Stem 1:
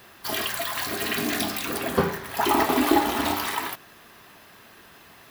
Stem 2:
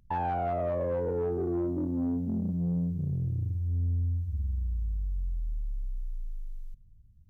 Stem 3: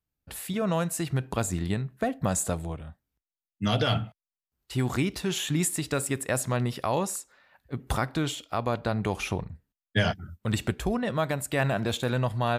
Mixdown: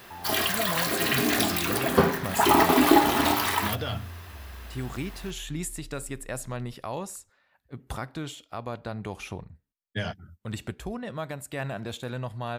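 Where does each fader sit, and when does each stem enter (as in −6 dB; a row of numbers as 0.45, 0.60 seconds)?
+2.0, −12.0, −7.0 decibels; 0.00, 0.00, 0.00 seconds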